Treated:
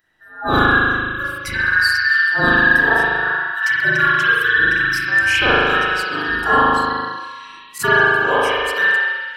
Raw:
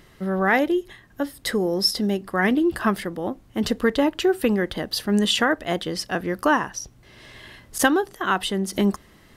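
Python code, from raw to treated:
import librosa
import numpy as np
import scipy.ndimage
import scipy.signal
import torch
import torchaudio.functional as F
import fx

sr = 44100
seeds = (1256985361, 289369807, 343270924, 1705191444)

y = fx.band_invert(x, sr, width_hz=2000)
y = fx.rev_spring(y, sr, rt60_s=2.3, pass_ms=(38,), chirp_ms=30, drr_db=-9.5)
y = fx.noise_reduce_blind(y, sr, reduce_db=16)
y = y * librosa.db_to_amplitude(-2.5)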